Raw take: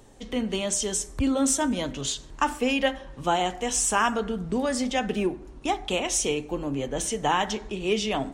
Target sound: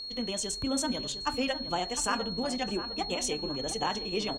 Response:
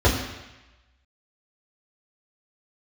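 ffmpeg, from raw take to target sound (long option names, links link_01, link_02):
-filter_complex "[0:a]aeval=exprs='val(0)+0.0282*sin(2*PI*4300*n/s)':channel_layout=same,atempo=1.9,bandreject=frequency=137:width_type=h:width=4,bandreject=frequency=274:width_type=h:width=4,bandreject=frequency=411:width_type=h:width=4,bandreject=frequency=548:width_type=h:width=4,bandreject=frequency=685:width_type=h:width=4,bandreject=frequency=822:width_type=h:width=4,bandreject=frequency=959:width_type=h:width=4,bandreject=frequency=1096:width_type=h:width=4,asplit=2[link_01][link_02];[link_02]adelay=707,lowpass=frequency=1500:poles=1,volume=-10dB,asplit=2[link_03][link_04];[link_04]adelay=707,lowpass=frequency=1500:poles=1,volume=0.41,asplit=2[link_05][link_06];[link_06]adelay=707,lowpass=frequency=1500:poles=1,volume=0.41,asplit=2[link_07][link_08];[link_08]adelay=707,lowpass=frequency=1500:poles=1,volume=0.41[link_09];[link_03][link_05][link_07][link_09]amix=inputs=4:normalize=0[link_10];[link_01][link_10]amix=inputs=2:normalize=0,volume=-6dB"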